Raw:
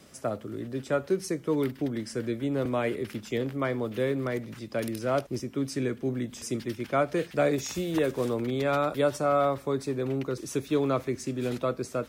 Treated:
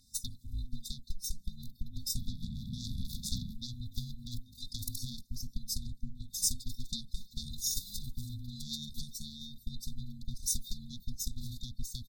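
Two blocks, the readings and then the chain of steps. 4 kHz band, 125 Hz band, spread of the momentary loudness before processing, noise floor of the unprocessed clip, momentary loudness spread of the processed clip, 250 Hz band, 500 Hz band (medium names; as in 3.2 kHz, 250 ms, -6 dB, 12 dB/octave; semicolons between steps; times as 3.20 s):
+2.5 dB, -7.0 dB, 7 LU, -49 dBFS, 11 LU, -17.0 dB, under -40 dB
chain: spectral noise reduction 7 dB; comb 2.8 ms, depth 36%; compression 16:1, threshold -33 dBFS, peak gain reduction 15 dB; robot voice 367 Hz; painted sound noise, 2.16–3.55 s, 400–1600 Hz -45 dBFS; Chebyshev shaper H 5 -26 dB, 8 -12 dB, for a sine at -21.5 dBFS; brick-wall FIR band-stop 250–3400 Hz; tape noise reduction on one side only decoder only; trim +10.5 dB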